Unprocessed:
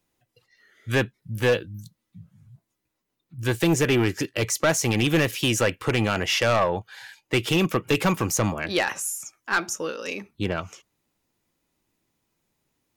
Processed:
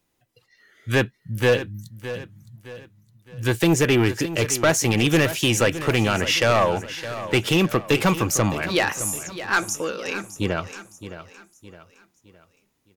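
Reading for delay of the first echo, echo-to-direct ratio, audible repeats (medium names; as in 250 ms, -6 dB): 614 ms, -12.0 dB, 3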